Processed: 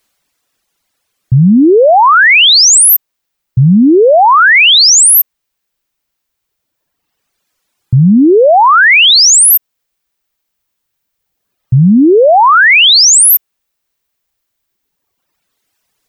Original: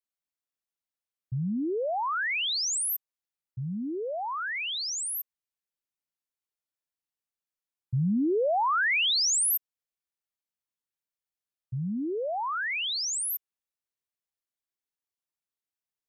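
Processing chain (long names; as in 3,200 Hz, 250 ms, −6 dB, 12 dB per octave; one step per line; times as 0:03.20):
reverb reduction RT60 1.9 s
high-shelf EQ 9,600 Hz −5 dB, from 0:08.05 −10 dB, from 0:09.26 −3 dB
boost into a limiter +33 dB
level −1 dB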